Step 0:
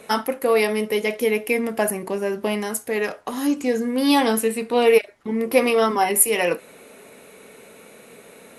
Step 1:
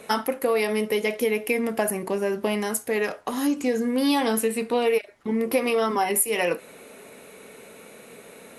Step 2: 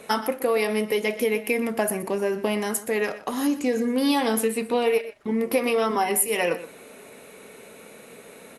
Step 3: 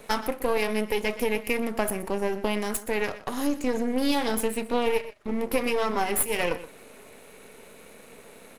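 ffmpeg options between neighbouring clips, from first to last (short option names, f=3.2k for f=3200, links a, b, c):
-af "acompressor=threshold=-19dB:ratio=5"
-filter_complex "[0:a]asplit=2[a][b];[b]adelay=122.4,volume=-14dB,highshelf=f=4k:g=-2.76[c];[a][c]amix=inputs=2:normalize=0"
-af "aeval=exprs='if(lt(val(0),0),0.251*val(0),val(0))':c=same"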